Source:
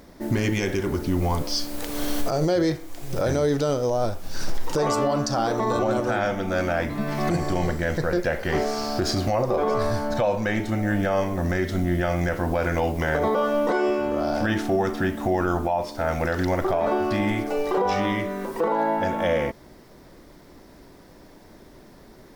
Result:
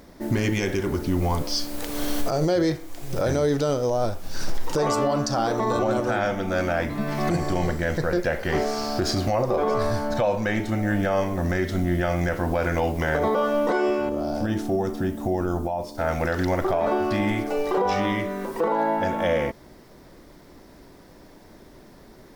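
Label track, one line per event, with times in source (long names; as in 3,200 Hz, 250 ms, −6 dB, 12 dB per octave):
14.090000	15.980000	parametric band 1,900 Hz −10.5 dB 2.3 octaves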